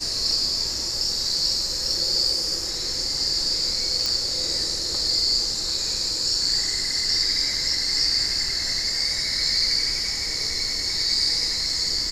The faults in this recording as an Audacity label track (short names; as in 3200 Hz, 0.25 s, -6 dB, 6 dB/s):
4.060000	4.060000	pop